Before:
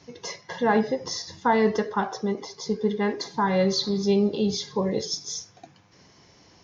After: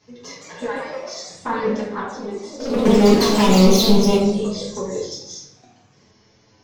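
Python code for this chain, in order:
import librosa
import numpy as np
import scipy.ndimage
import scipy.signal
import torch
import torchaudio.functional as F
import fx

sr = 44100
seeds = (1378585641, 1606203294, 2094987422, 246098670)

y = fx.highpass(x, sr, hz=fx.line((0.66, 1100.0), (1.12, 300.0)), slope=24, at=(0.66, 1.12), fade=0.02)
y = fx.leveller(y, sr, passes=5, at=(2.85, 4.17))
y = fx.env_flanger(y, sr, rest_ms=9.6, full_db=-13.5)
y = fx.room_shoebox(y, sr, seeds[0], volume_m3=220.0, walls='mixed', distance_m=1.4)
y = fx.echo_pitch(y, sr, ms=195, semitones=2, count=3, db_per_echo=-6.0)
y = F.gain(torch.from_numpy(y), -3.0).numpy()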